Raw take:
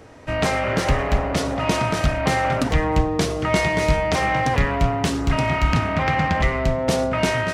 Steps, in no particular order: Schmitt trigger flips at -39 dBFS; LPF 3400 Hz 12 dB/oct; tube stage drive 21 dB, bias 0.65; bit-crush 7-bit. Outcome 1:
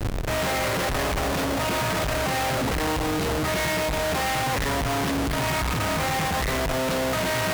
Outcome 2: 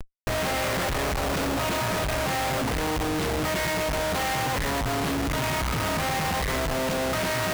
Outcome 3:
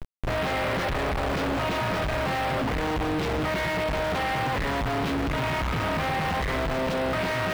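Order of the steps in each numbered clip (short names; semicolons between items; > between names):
LPF > Schmitt trigger > bit-crush > tube stage; LPF > bit-crush > tube stage > Schmitt trigger; tube stage > Schmitt trigger > LPF > bit-crush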